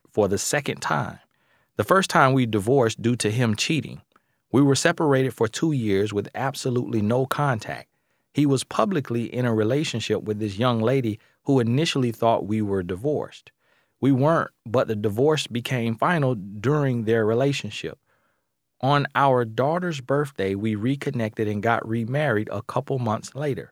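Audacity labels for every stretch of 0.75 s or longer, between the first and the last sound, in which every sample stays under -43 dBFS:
17.940000	18.810000	silence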